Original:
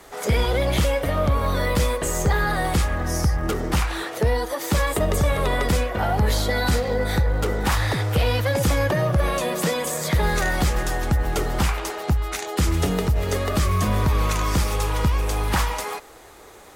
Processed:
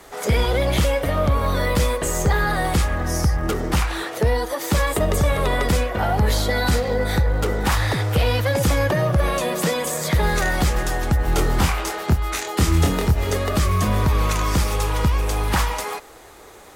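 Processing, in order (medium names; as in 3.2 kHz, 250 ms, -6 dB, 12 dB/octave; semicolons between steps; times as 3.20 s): 11.25–13.31 s: doubling 25 ms -3 dB; trim +1.5 dB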